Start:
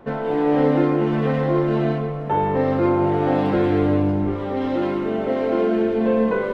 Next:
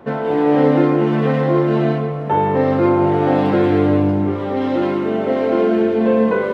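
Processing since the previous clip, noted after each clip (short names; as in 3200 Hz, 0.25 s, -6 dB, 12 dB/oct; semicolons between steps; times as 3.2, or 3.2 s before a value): HPF 75 Hz; gain +4 dB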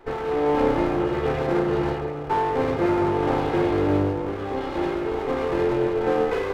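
minimum comb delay 2.4 ms; gain -5.5 dB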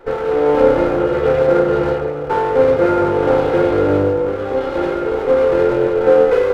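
small resonant body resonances 510/1400 Hz, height 14 dB, ringing for 55 ms; gain +3.5 dB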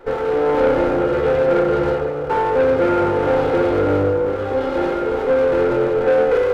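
soft clip -10.5 dBFS, distortion -14 dB; reverb RT60 1.6 s, pre-delay 4 ms, DRR 14 dB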